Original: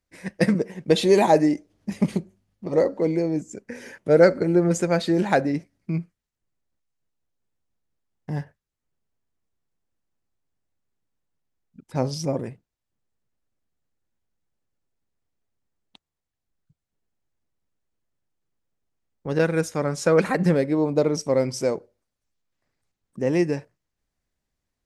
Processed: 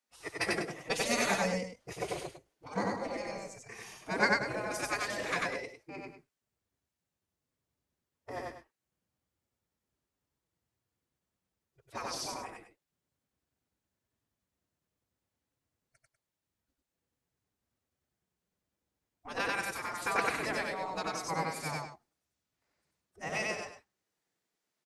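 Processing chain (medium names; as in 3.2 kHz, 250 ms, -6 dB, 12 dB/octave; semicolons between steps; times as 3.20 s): spectral gate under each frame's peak -15 dB weak; formant-preserving pitch shift +3.5 st; loudspeakers at several distances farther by 32 m -1 dB, 67 m -11 dB; trim -1.5 dB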